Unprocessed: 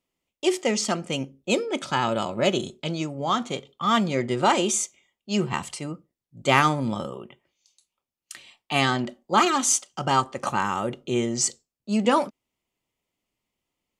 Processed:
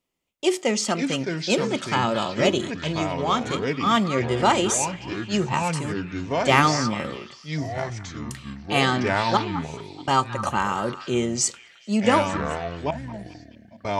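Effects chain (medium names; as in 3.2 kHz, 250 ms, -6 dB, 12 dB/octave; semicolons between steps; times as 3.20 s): 9.37–10.08 s: vowel filter u; ever faster or slower copies 396 ms, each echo -5 st, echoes 2, each echo -6 dB; repeats whose band climbs or falls 215 ms, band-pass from 1.4 kHz, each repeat 0.7 oct, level -10.5 dB; trim +1 dB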